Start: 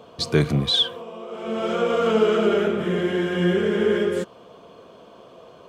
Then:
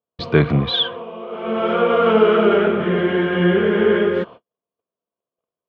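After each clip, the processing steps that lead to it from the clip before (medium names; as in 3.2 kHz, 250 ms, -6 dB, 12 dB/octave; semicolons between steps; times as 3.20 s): low-pass 3.3 kHz 24 dB/octave; dynamic bell 1.1 kHz, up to +4 dB, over -38 dBFS, Q 1; gate -39 dBFS, range -48 dB; trim +4 dB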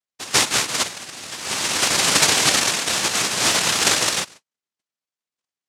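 noise-vocoded speech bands 1; trim -3.5 dB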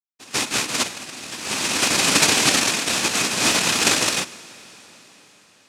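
fade-in on the opening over 0.74 s; small resonant body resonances 250/2500 Hz, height 7 dB, ringing for 20 ms; reverberation RT60 5.4 s, pre-delay 5 ms, DRR 18.5 dB; trim -1 dB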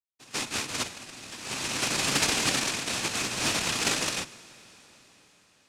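octave divider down 1 oct, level -4 dB; loudspeaker Doppler distortion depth 0.23 ms; trim -8.5 dB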